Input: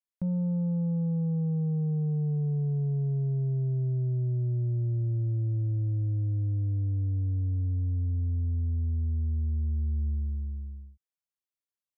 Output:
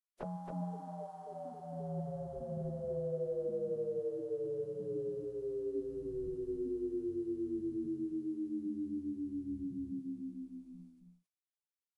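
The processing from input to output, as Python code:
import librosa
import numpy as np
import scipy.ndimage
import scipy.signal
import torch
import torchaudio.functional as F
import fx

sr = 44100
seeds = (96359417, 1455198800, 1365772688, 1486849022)

y = fx.pitch_keep_formants(x, sr, semitones=-11.5)
y = fx.spec_gate(y, sr, threshold_db=-15, keep='weak')
y = y + 10.0 ** (-4.5 / 20.0) * np.pad(y, (int(272 * sr / 1000.0), 0))[:len(y)]
y = y * 10.0 ** (8.0 / 20.0)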